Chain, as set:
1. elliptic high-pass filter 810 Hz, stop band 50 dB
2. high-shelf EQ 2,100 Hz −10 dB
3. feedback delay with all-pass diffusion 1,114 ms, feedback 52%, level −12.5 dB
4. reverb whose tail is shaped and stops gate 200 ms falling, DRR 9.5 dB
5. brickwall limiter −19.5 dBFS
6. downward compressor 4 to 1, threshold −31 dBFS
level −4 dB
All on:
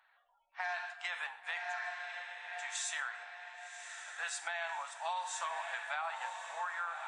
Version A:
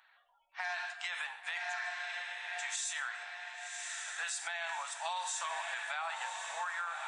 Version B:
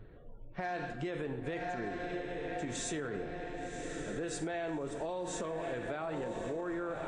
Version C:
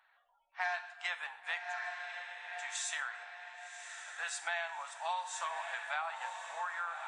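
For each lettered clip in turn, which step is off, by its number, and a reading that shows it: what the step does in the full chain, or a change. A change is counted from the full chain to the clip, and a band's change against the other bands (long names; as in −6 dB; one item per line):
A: 2, 500 Hz band −4.0 dB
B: 1, 500 Hz band +15.5 dB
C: 5, change in crest factor +2.5 dB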